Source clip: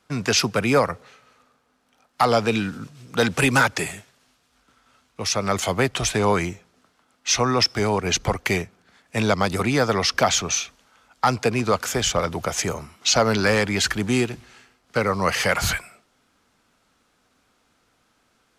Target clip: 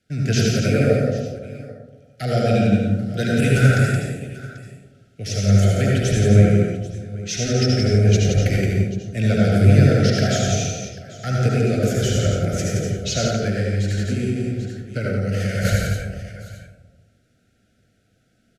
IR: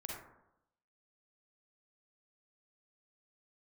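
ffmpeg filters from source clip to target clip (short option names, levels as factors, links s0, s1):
-filter_complex "[0:a]aecho=1:1:172|789:0.562|0.126,flanger=delay=3.1:depth=7.6:regen=63:speed=1.2:shape=triangular,asuperstop=centerf=1000:order=12:qfactor=1.6,equalizer=f=110:t=o:w=1.5:g=14[s0];[1:a]atrim=start_sample=2205,asetrate=26901,aresample=44100[s1];[s0][s1]afir=irnorm=-1:irlink=0,asettb=1/sr,asplit=3[s2][s3][s4];[s2]atrim=end=13.274[s5];[s3]atrim=start=13.27:end=15.65,asetpts=PTS-STARTPTS,afade=t=in:d=0.004:c=qsin,afade=t=out:st=2.376:d=0.004:c=qsin,acompressor=threshold=0.112:ratio=5[s6];[s4]atrim=start=15.646[s7];[s5][s6]acrossfade=d=0.004:c1=hsin:c2=qsin[s8];[s8][s7]acrossfade=d=0.004:c1=qsin:c2=hsin"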